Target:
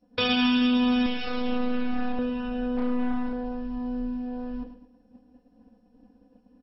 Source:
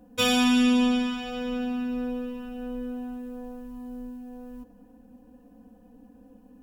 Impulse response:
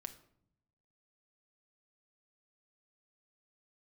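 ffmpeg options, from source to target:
-filter_complex "[0:a]alimiter=limit=-21dB:level=0:latency=1,agate=range=-33dB:threshold=-41dB:ratio=3:detection=peak,acontrast=51,asettb=1/sr,asplit=3[link_01][link_02][link_03];[link_01]atrim=end=1.064[link_04];[link_02]atrim=start=1.06:end=2.19,asetpts=PTS-STARTPTS,afade=type=in:duration=0.004:curve=qsin,afade=type=out:start_time=1.126:duration=0.004:curve=qsin,aeval=exprs='max(val(0),0)':channel_layout=same[link_05];[link_03]atrim=start=2.186[link_06];[link_04][link_05]acrossfade=duration=0.004:curve1=hsin:curve2=qsin[link_07];[link_07][link_06]acrossfade=duration=0.004:curve1=qsin:curve2=hsin,acompressor=threshold=-30dB:ratio=1.5,asettb=1/sr,asplit=3[link_08][link_09][link_10];[link_08]atrim=end=2.774[link_11];[link_09]atrim=start=2.77:end=3.33,asetpts=PTS-STARTPTS,afade=type=in:duration=0.004:curve=qsin,afade=type=out:start_time=0.556:duration=0.004:curve=qsin,aeval=exprs='0.075*(cos(1*acos(clip(val(0)/0.075,-1,1)))-cos(1*PI/2))+0.0106*(cos(4*acos(clip(val(0)/0.075,-1,1)))-cos(4*PI/2))+0.00473*(cos(8*acos(clip(val(0)/0.075,-1,1)))-cos(8*PI/2))':channel_layout=same[link_12];[link_10]atrim=start=3.326[link_13];[link_11][link_12]acrossfade=duration=0.004:curve1=hsin:curve2=qsin[link_14];[link_14][link_13]acrossfade=duration=0.004:curve1=qsin:curve2=hsin,aecho=1:1:108|216|324|432:0.282|0.0986|0.0345|0.0121,volume=3dB" -ar 22050 -c:a mp2 -b:a 32k

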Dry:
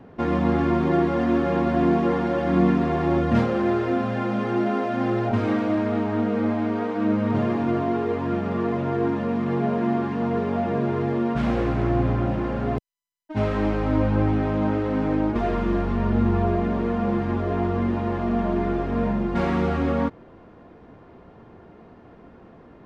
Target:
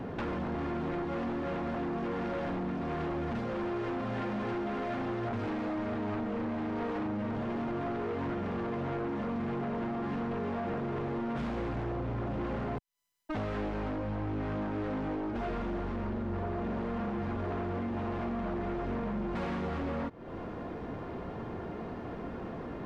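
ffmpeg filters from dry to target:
ffmpeg -i in.wav -af "acompressor=threshold=-35dB:ratio=20,aeval=exprs='0.0398*sin(PI/2*2.24*val(0)/0.0398)':channel_layout=same,volume=-2.5dB" out.wav

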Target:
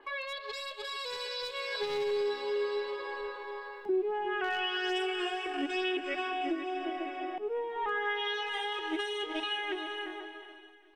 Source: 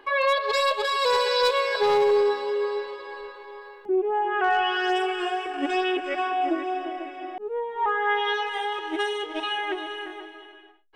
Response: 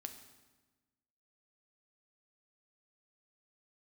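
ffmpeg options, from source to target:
-filter_complex "[0:a]equalizer=frequency=100:width=2.4:gain=-13,acrossover=split=340|1900[link_01][link_02][link_03];[link_02]acompressor=threshold=-38dB:ratio=5[link_04];[link_01][link_04][link_03]amix=inputs=3:normalize=0,alimiter=level_in=0.5dB:limit=-24dB:level=0:latency=1:release=329,volume=-0.5dB,dynaudnorm=framelen=610:gausssize=5:maxgain=6dB,asplit=2[link_05][link_06];[link_06]aecho=0:1:378|756|1134|1512:0.0944|0.0529|0.0296|0.0166[link_07];[link_05][link_07]amix=inputs=2:normalize=0,adynamicequalizer=threshold=0.00562:dfrequency=4400:dqfactor=0.7:tfrequency=4400:tqfactor=0.7:attack=5:release=100:ratio=0.375:range=1.5:mode=cutabove:tftype=highshelf,volume=-5dB"

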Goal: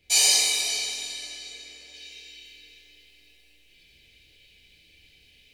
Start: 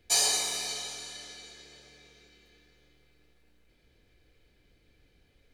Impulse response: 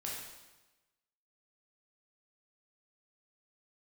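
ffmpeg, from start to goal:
-filter_complex "[0:a]asetnsamples=nb_out_samples=441:pad=0,asendcmd='1.94 highshelf g 12',highshelf=frequency=1900:width_type=q:width=3:gain=6[link_01];[1:a]atrim=start_sample=2205,afade=type=out:start_time=0.24:duration=0.01,atrim=end_sample=11025[link_02];[link_01][link_02]afir=irnorm=-1:irlink=0"

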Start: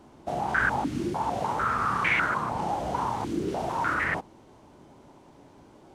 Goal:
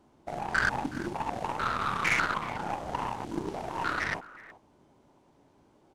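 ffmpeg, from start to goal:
ffmpeg -i in.wav -filter_complex "[0:a]asplit=2[link_01][link_02];[link_02]adelay=370,highpass=300,lowpass=3400,asoftclip=type=hard:threshold=-21dB,volume=-12dB[link_03];[link_01][link_03]amix=inputs=2:normalize=0,aeval=exprs='0.266*(cos(1*acos(clip(val(0)/0.266,-1,1)))-cos(1*PI/2))+0.0075*(cos(6*acos(clip(val(0)/0.266,-1,1)))-cos(6*PI/2))+0.0237*(cos(7*acos(clip(val(0)/0.266,-1,1)))-cos(7*PI/2))':channel_layout=same,volume=-1.5dB" out.wav

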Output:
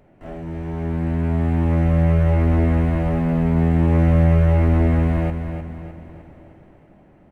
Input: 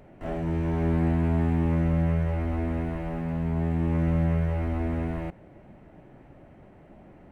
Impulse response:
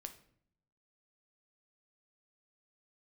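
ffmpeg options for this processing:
-filter_complex "[0:a]dynaudnorm=framelen=460:gausssize=7:maxgain=12dB,aecho=1:1:305|610|915|1220|1525:0.398|0.179|0.0806|0.0363|0.0163,asplit=2[link_01][link_02];[1:a]atrim=start_sample=2205[link_03];[link_02][link_03]afir=irnorm=-1:irlink=0,volume=-5dB[link_04];[link_01][link_04]amix=inputs=2:normalize=0,volume=-5dB"

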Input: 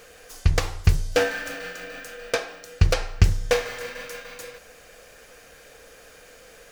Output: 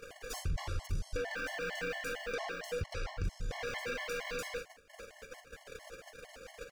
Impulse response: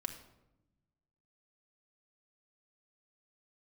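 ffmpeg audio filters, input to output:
-filter_complex "[0:a]highshelf=frequency=7900:gain=-9.5,agate=range=-53dB:threshold=-45dB:ratio=16:detection=peak,acompressor=mode=upward:threshold=-31dB:ratio=2.5,alimiter=level_in=7dB:limit=-24dB:level=0:latency=1:release=10,volume=-7dB,asplit=2[link_01][link_02];[link_02]aecho=0:1:45|56:0.299|0.188[link_03];[link_01][link_03]amix=inputs=2:normalize=0,afftfilt=real='re*gt(sin(2*PI*4.4*pts/sr)*(1-2*mod(floor(b*sr/1024/560),2)),0)':imag='im*gt(sin(2*PI*4.4*pts/sr)*(1-2*mod(floor(b*sr/1024/560),2)),0)':win_size=1024:overlap=0.75,volume=3dB"

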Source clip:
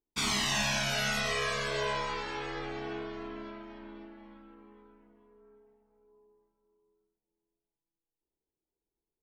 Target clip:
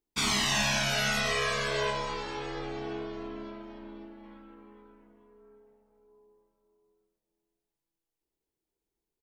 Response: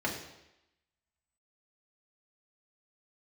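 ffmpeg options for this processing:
-filter_complex "[0:a]asettb=1/sr,asplit=3[link_01][link_02][link_03];[link_01]atrim=end=1.904[link_04];[link_02]atrim=start=1.9:end=4.24,asetpts=PTS-STARTPTS,afade=type=in:duration=0.004:curve=qsin,afade=type=out:start_time=2.336:duration=0.004:curve=qsin,equalizer=frequency=1800:width_type=o:width=1.6:gain=-5.5[link_05];[link_03]atrim=start=4.236[link_06];[link_04][link_05]acrossfade=duration=0.004:curve1=hsin:curve2=qsin[link_07];[link_07][link_06]acrossfade=duration=0.004:curve1=qsin:curve2=hsin,asplit=4[link_08][link_09][link_10][link_11];[link_09]adelay=215,afreqshift=100,volume=-24dB[link_12];[link_10]adelay=430,afreqshift=200,volume=-29.4dB[link_13];[link_11]adelay=645,afreqshift=300,volume=-34.7dB[link_14];[link_08][link_12][link_13][link_14]amix=inputs=4:normalize=0,volume=2.5dB"

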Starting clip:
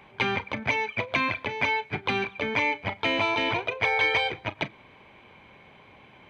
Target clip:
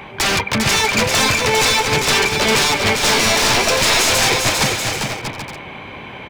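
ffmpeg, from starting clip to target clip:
ffmpeg -i in.wav -filter_complex "[0:a]apsyclip=20.5dB,aeval=exprs='0.376*(abs(mod(val(0)/0.376+3,4)-2)-1)':channel_layout=same,asplit=2[link_01][link_02];[link_02]aecho=0:1:400|640|784|870.4|922.2:0.631|0.398|0.251|0.158|0.1[link_03];[link_01][link_03]amix=inputs=2:normalize=0,volume=-3dB" out.wav

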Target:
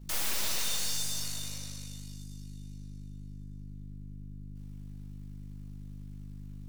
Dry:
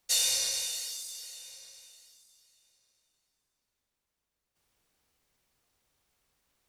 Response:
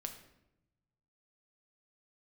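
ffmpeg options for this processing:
-filter_complex "[0:a]acrossover=split=5200[link_01][link_02];[link_02]acompressor=threshold=-34dB:ratio=4:attack=1:release=60[link_03];[link_01][link_03]amix=inputs=2:normalize=0,asplit=2[link_04][link_05];[link_05]aeval=exprs='sgn(val(0))*max(abs(val(0))-0.00422,0)':channel_layout=same,volume=-9.5dB[link_06];[link_04][link_06]amix=inputs=2:normalize=0,aeval=exprs='val(0)+0.00355*(sin(2*PI*50*n/s)+sin(2*PI*2*50*n/s)/2+sin(2*PI*3*50*n/s)/3+sin(2*PI*4*50*n/s)/4+sin(2*PI*5*50*n/s)/5)':channel_layout=same,aeval=exprs='0.0237*(abs(mod(val(0)/0.0237+3,4)-2)-1)':channel_layout=same,aeval=exprs='0.0237*(cos(1*acos(clip(val(0)/0.0237,-1,1)))-cos(1*PI/2))+0.00473*(cos(4*acos(clip(val(0)/0.0237,-1,1)))-cos(4*PI/2))':channel_layout=same[link_07];[1:a]atrim=start_sample=2205[link_08];[link_07][link_08]afir=irnorm=-1:irlink=0,volume=6.5dB"

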